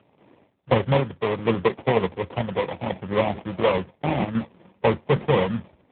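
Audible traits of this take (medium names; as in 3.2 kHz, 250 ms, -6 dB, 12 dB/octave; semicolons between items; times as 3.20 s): aliases and images of a low sample rate 1.5 kHz, jitter 20%; tremolo saw down 0.69 Hz, depth 55%; AMR-NB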